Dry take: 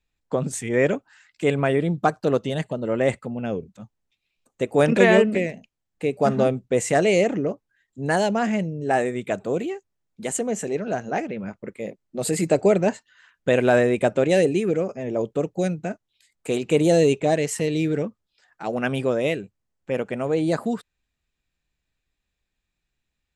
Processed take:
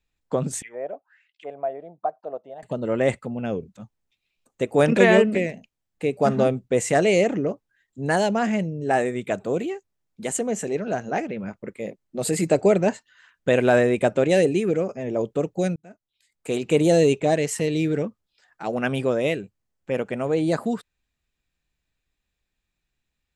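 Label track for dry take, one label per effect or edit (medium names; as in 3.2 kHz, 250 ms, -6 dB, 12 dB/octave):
0.620000	2.630000	auto-wah 680–3800 Hz, Q 6.3, down, full sweep at -20.5 dBFS
15.760000	16.660000	fade in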